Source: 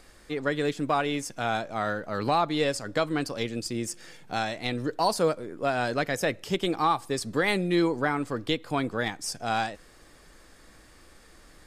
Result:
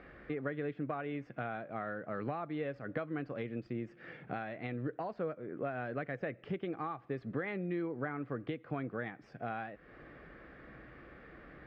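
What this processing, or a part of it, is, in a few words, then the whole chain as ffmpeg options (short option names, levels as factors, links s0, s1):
bass amplifier: -af "acompressor=threshold=0.00891:ratio=4,highpass=62,equalizer=f=91:t=q:w=4:g=-9,equalizer=f=130:t=q:w=4:g=5,equalizer=f=930:t=q:w=4:g=-9,lowpass=f=2200:w=0.5412,lowpass=f=2200:w=1.3066,volume=1.58"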